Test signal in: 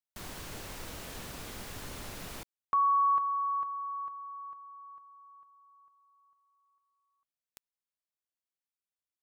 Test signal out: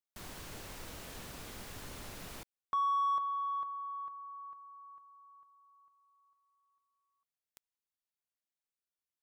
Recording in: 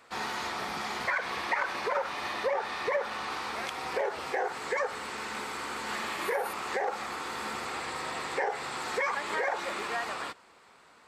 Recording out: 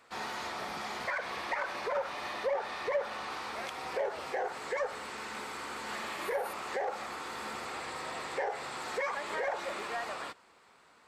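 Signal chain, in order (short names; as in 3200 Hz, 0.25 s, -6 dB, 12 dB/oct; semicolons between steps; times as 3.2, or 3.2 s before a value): dynamic EQ 600 Hz, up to +6 dB, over -46 dBFS, Q 3; in parallel at -4 dB: soft clip -29 dBFS; on the sum: gain -8 dB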